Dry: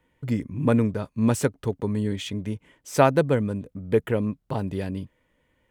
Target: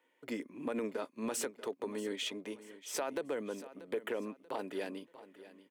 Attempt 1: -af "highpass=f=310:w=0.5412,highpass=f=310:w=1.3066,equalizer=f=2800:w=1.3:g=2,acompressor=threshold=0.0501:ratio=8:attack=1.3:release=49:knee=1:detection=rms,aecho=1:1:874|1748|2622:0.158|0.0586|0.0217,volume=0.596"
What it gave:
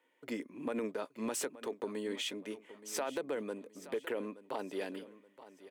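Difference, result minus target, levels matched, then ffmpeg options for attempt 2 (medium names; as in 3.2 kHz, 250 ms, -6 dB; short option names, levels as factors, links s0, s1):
echo 238 ms late
-af "highpass=f=310:w=0.5412,highpass=f=310:w=1.3066,equalizer=f=2800:w=1.3:g=2,acompressor=threshold=0.0501:ratio=8:attack=1.3:release=49:knee=1:detection=rms,aecho=1:1:636|1272|1908:0.158|0.0586|0.0217,volume=0.596"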